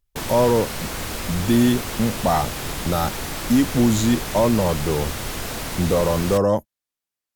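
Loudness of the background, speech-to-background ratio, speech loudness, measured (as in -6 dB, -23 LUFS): -28.5 LUFS, 7.5 dB, -21.0 LUFS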